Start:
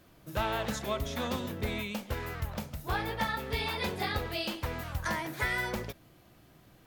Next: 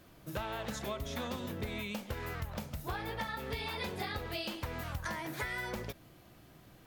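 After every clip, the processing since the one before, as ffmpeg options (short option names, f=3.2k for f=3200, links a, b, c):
-af "acompressor=threshold=-36dB:ratio=6,volume=1dB"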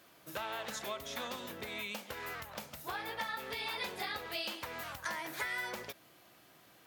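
-af "highpass=f=750:p=1,volume=2dB"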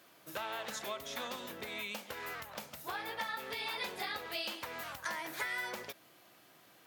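-af "lowshelf=f=92:g=-10"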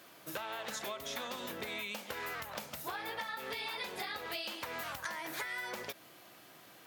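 -af "acompressor=threshold=-42dB:ratio=6,volume=5dB"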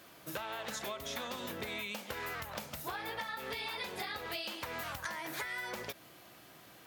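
-af "lowshelf=f=110:g=11.5"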